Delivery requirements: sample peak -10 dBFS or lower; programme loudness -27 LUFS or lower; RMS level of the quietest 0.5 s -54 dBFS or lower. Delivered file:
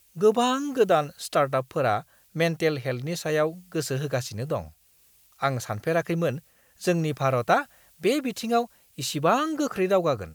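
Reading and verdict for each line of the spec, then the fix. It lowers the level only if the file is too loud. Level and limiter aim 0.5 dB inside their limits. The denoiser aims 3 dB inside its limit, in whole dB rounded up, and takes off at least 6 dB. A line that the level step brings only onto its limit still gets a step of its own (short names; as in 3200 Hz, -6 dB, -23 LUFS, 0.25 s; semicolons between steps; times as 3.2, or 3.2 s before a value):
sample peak -7.0 dBFS: fail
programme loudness -26.0 LUFS: fail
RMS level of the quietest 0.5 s -60 dBFS: OK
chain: gain -1.5 dB; limiter -10.5 dBFS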